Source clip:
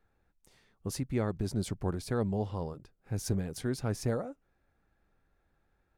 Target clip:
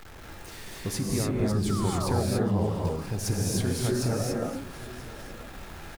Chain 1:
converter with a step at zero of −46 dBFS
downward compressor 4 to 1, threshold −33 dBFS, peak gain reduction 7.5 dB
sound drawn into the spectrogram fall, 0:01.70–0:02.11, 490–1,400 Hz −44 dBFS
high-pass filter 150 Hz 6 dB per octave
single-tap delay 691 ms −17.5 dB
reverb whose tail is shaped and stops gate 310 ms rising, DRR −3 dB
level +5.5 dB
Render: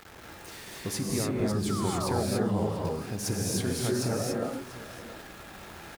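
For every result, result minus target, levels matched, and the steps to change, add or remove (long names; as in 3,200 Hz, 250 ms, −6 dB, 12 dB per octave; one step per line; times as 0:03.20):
echo 292 ms early; 125 Hz band −2.5 dB
change: single-tap delay 983 ms −17.5 dB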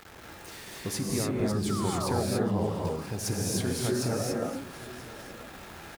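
125 Hz band −2.5 dB
remove: high-pass filter 150 Hz 6 dB per octave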